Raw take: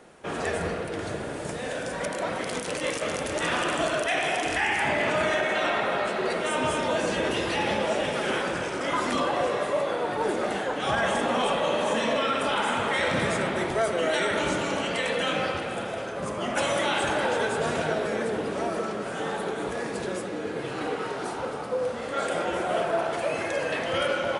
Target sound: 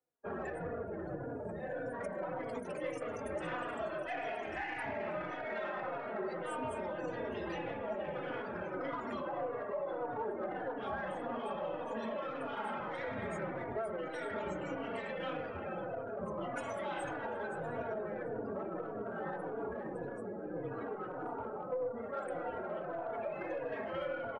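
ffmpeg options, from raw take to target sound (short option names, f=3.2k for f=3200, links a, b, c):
-filter_complex "[0:a]afftdn=nr=35:nf=-34,equalizer=f=3.4k:t=o:w=1.3:g=-10.5,bandreject=f=50:t=h:w=6,bandreject=f=100:t=h:w=6,bandreject=f=150:t=h:w=6,bandreject=f=200:t=h:w=6,bandreject=f=250:t=h:w=6,bandreject=f=300:t=h:w=6,bandreject=f=350:t=h:w=6,bandreject=f=400:t=h:w=6,bandreject=f=450:t=h:w=6,acompressor=threshold=-30dB:ratio=10,aeval=exprs='0.0891*(cos(1*acos(clip(val(0)/0.0891,-1,1)))-cos(1*PI/2))+0.00282*(cos(5*acos(clip(val(0)/0.0891,-1,1)))-cos(5*PI/2))+0.00178*(cos(6*acos(clip(val(0)/0.0891,-1,1)))-cos(6*PI/2))':c=same,asplit=2[a][b];[b]adelay=3.5,afreqshift=-1.7[c];[a][c]amix=inputs=2:normalize=1,volume=-3dB"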